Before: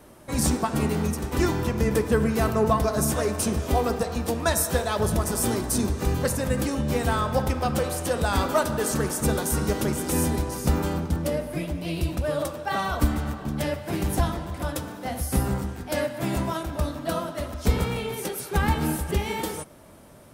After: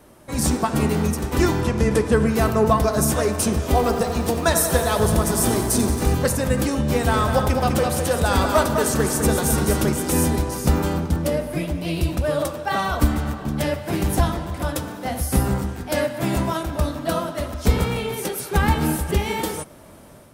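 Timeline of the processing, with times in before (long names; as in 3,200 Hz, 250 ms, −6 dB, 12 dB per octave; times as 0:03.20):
0:01.61–0:02.27: low-pass filter 11,000 Hz 24 dB per octave
0:03.61–0:06.15: feedback echo at a low word length 91 ms, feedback 80%, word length 8 bits, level −11 dB
0:06.93–0:09.89: single-tap delay 205 ms −6 dB
whole clip: automatic gain control gain up to 4.5 dB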